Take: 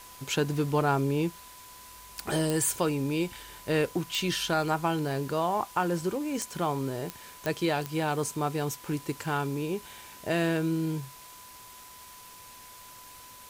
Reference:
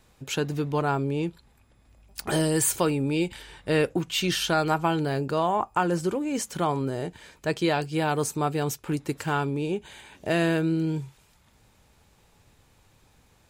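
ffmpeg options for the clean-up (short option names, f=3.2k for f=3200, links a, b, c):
-af "adeclick=t=4,bandreject=f=1k:w=30,afwtdn=0.0035,asetnsamples=n=441:p=0,asendcmd='1.28 volume volume 3.5dB',volume=0dB"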